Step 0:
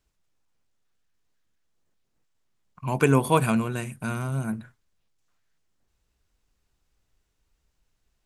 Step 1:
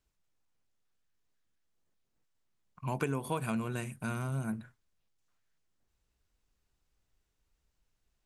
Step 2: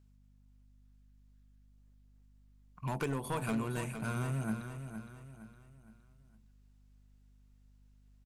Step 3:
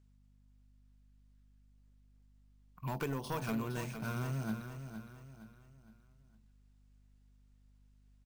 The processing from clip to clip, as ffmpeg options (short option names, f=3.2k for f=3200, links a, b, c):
-af "acompressor=threshold=-23dB:ratio=12,volume=-5.5dB"
-filter_complex "[0:a]aeval=exprs='val(0)+0.000794*(sin(2*PI*50*n/s)+sin(2*PI*2*50*n/s)/2+sin(2*PI*3*50*n/s)/3+sin(2*PI*4*50*n/s)/4+sin(2*PI*5*50*n/s)/5)':c=same,asoftclip=type=hard:threshold=-29dB,asplit=2[a][b];[b]aecho=0:1:463|926|1389|1852:0.355|0.142|0.0568|0.0227[c];[a][c]amix=inputs=2:normalize=0"
-af "acrusher=samples=3:mix=1:aa=0.000001,volume=-2dB"